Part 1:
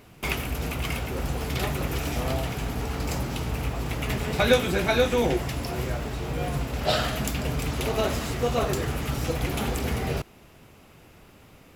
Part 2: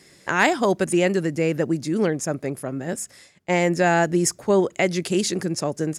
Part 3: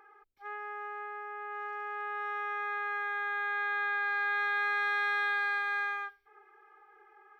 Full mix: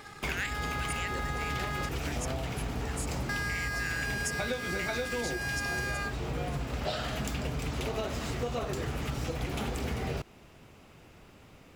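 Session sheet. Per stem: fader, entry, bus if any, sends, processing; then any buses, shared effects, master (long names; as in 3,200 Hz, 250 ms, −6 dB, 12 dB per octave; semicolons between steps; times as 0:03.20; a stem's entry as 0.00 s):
−2.5 dB, 0.00 s, no send, parametric band 12,000 Hz −10.5 dB 0.41 octaves
−5.5 dB, 0.00 s, no send, inverse Chebyshev high-pass filter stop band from 800 Hz, stop band 40 dB
−9.5 dB, 0.00 s, muted 0:01.89–0:03.29, no send, parametric band 2,100 Hz +6.5 dB 1.5 octaves; leveller curve on the samples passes 5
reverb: not used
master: downward compressor 12 to 1, threshold −29 dBFS, peak gain reduction 14 dB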